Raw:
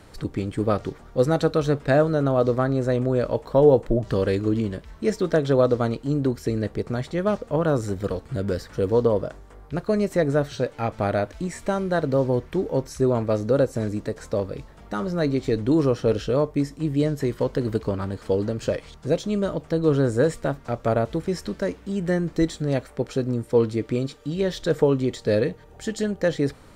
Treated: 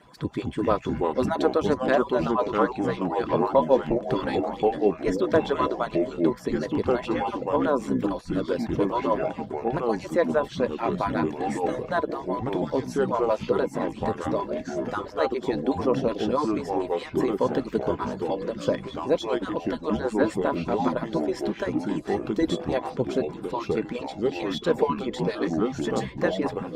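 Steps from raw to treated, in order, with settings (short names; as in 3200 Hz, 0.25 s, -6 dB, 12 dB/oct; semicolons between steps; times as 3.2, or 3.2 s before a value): median-filter separation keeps percussive; HPF 100 Hz 6 dB/oct; tone controls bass +1 dB, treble -6 dB; small resonant body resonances 1000/3400 Hz, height 17 dB, ringing for 95 ms; echoes that change speed 0.159 s, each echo -4 st, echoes 3; Opus 64 kbps 48000 Hz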